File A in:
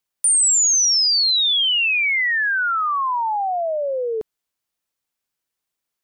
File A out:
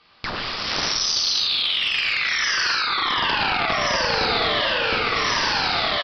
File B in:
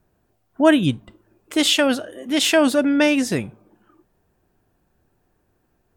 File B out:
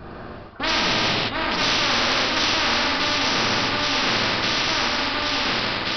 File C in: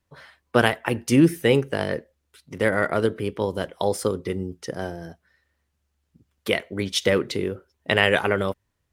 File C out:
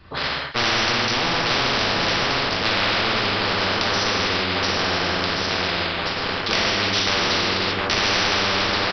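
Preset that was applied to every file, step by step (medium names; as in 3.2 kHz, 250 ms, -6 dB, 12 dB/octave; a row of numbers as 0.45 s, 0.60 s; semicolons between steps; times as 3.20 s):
Chebyshev shaper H 7 -9 dB, 8 -43 dB, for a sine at -1 dBFS; transient shaper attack -5 dB, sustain 0 dB; on a send: echo whose repeats swap between lows and highs 714 ms, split 1.6 kHz, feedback 62%, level -9 dB; on the sum: gated-style reverb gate 410 ms falling, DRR -6 dB; waveshaping leveller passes 1; peaking EQ 1.2 kHz +9 dB 0.28 oct; resampled via 11.025 kHz; reverse; compression 6:1, threshold -18 dBFS; reverse; spectrum-flattening compressor 4:1; normalise loudness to -20 LUFS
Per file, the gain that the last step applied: +1.0 dB, +1.5 dB, +4.0 dB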